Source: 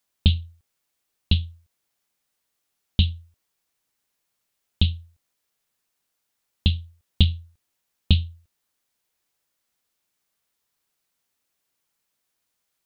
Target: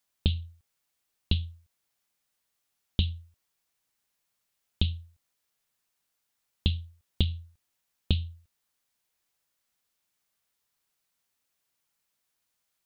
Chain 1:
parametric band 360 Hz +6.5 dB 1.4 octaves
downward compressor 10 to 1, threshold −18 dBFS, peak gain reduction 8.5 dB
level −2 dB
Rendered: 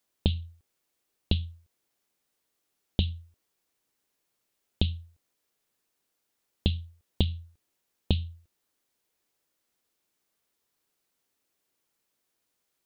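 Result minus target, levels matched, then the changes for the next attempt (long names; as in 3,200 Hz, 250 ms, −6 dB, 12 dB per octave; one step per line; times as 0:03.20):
500 Hz band +5.5 dB
change: parametric band 360 Hz −3 dB 1.4 octaves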